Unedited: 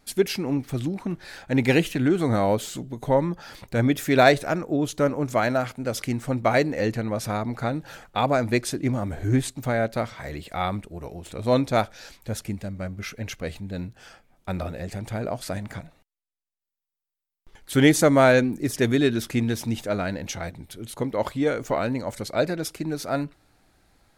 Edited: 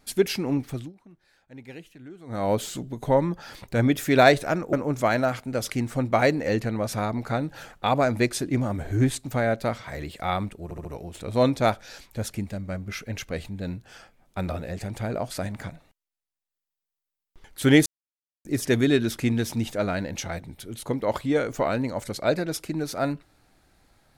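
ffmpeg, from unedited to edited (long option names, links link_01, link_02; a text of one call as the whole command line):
ffmpeg -i in.wav -filter_complex "[0:a]asplit=9[link_01][link_02][link_03][link_04][link_05][link_06][link_07][link_08][link_09];[link_01]atrim=end=0.93,asetpts=PTS-STARTPTS,afade=type=out:start_time=0.63:duration=0.3:silence=0.0749894[link_10];[link_02]atrim=start=0.93:end=2.26,asetpts=PTS-STARTPTS,volume=-22.5dB[link_11];[link_03]atrim=start=2.26:end=4.732,asetpts=PTS-STARTPTS,afade=type=in:duration=0.3:silence=0.0749894[link_12];[link_04]atrim=start=5.048:end=11.032[link_13];[link_05]atrim=start=10.958:end=11.032[link_14];[link_06]atrim=start=10.958:end=11.032[link_15];[link_07]atrim=start=10.958:end=17.97,asetpts=PTS-STARTPTS,afade=type=out:start_time=7.008:duration=0.004:curve=hsin[link_16];[link_08]atrim=start=17.97:end=18.56,asetpts=PTS-STARTPTS,volume=0[link_17];[link_09]atrim=start=18.56,asetpts=PTS-STARTPTS,afade=type=in:duration=0.004:curve=hsin[link_18];[link_10][link_11][link_12]concat=n=3:v=0:a=1[link_19];[link_19][link_13]acrossfade=duration=0.004:curve1=hsin:curve2=hsin[link_20];[link_20][link_14]acrossfade=duration=0.004:curve1=hsin:curve2=hsin[link_21];[link_21][link_15]acrossfade=duration=0.004:curve1=hsin:curve2=hsin[link_22];[link_16][link_17][link_18]concat=n=3:v=0:a=1[link_23];[link_22][link_23]acrossfade=duration=0.004:curve1=hsin:curve2=hsin" out.wav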